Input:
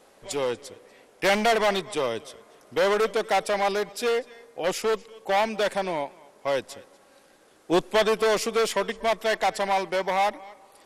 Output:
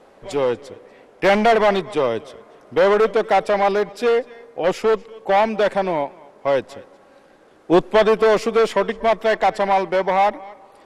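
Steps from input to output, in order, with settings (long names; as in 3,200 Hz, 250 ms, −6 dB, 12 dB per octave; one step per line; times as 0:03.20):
low-pass filter 1,500 Hz 6 dB per octave
level +8 dB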